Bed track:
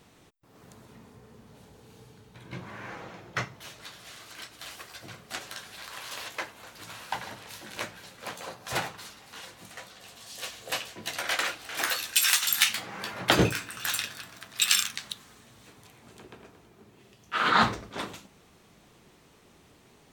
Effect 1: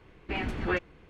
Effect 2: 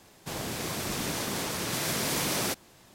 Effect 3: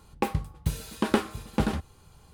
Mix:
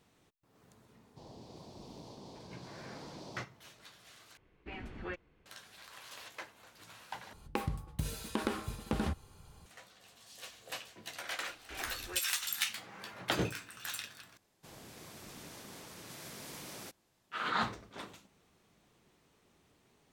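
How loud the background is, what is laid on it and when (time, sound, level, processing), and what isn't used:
bed track -11 dB
0.9 add 2 -16 dB + EQ curve 990 Hz 0 dB, 1500 Hz -25 dB, 4500 Hz -3 dB, 12000 Hz -27 dB
4.37 replace with 1 -13 dB
7.33 replace with 3 -2 dB + compressor, threshold -26 dBFS
11.41 add 1 -16.5 dB + bell 190 Hz -13 dB 0.68 oct
14.37 replace with 2 -18 dB

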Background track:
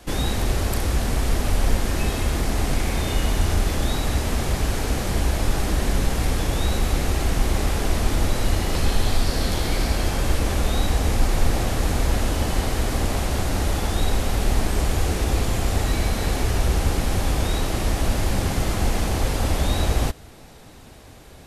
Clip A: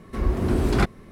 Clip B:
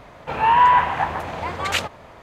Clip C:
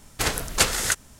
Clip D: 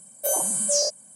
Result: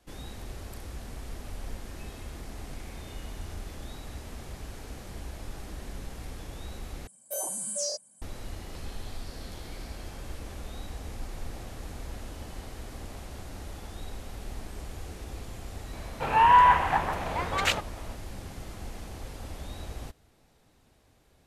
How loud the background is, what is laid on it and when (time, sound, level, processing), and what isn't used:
background track -18.5 dB
7.07 replace with D -9.5 dB
15.93 add B -3.5 dB
not used: A, C

